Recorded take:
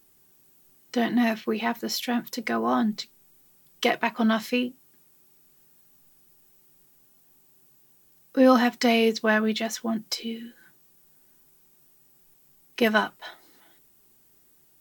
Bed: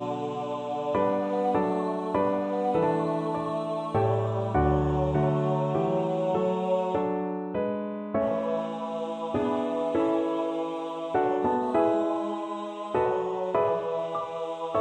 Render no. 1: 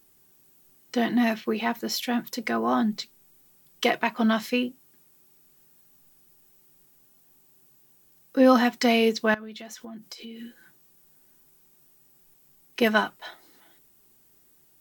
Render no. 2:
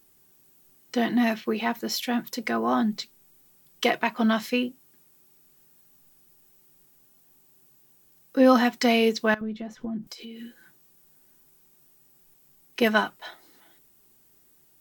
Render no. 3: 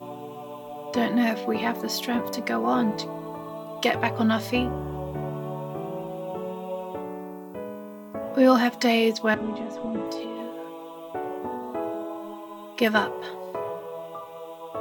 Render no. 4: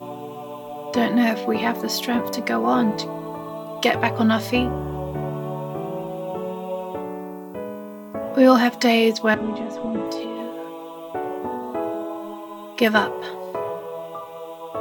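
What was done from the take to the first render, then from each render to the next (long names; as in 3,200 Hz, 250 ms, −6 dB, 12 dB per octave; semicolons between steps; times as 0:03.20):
0:09.34–0:10.40: downward compressor 8 to 1, threshold −37 dBFS
0:09.41–0:10.07: spectral tilt −4.5 dB per octave
mix in bed −7 dB
level +4 dB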